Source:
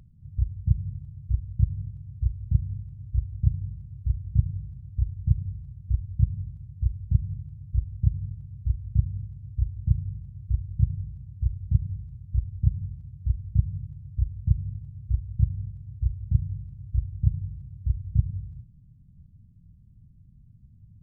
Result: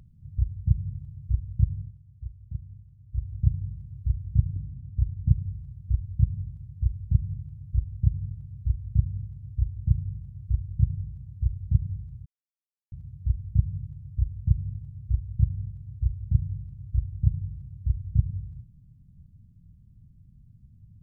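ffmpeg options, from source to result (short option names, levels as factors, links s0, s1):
-filter_complex "[0:a]asettb=1/sr,asplit=3[s0][s1][s2];[s0]atrim=end=4.564[s3];[s1]atrim=start=4.56:end=5.34,asetpts=PTS-STARTPTS,afade=t=in:d=0.004:c=qsin,afade=t=out:st=0.776:d=0.004:c=qsin,lowpass=f=270:t=q:w=2.2[s4];[s2]atrim=start=5.336[s5];[s3][s4]acrossfade=d=0.004:c1=hsin:c2=qsin[s6];[s6][s5]acrossfade=d=0.004:c1=qsin:c2=hsin,asplit=5[s7][s8][s9][s10][s11];[s7]atrim=end=1.98,asetpts=PTS-STARTPTS,afade=t=out:st=1.73:d=0.25:silence=0.251189[s12];[s8]atrim=start=1.98:end=3.06,asetpts=PTS-STARTPTS,volume=0.251[s13];[s9]atrim=start=3.06:end=12.26,asetpts=PTS-STARTPTS,afade=t=in:d=0.25:silence=0.251189,afade=t=out:st=9.196:d=0.004:c=hsin[s14];[s10]atrim=start=12.26:end=12.92,asetpts=PTS-STARTPTS,volume=0[s15];[s11]atrim=start=12.92,asetpts=PTS-STARTPTS,afade=t=in:d=0.004:c=hsin[s16];[s12][s13][s14][s15][s16]concat=n=5:v=0:a=1"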